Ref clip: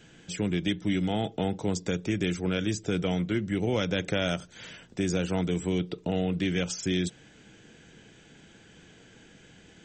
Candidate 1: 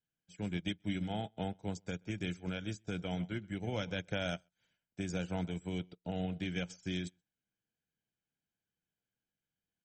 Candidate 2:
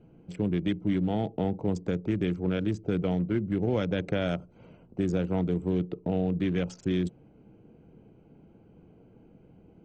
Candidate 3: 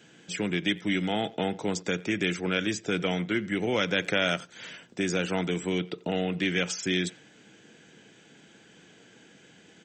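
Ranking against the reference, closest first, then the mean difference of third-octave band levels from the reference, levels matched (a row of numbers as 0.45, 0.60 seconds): 3, 2, 1; 2.5, 5.0, 7.0 decibels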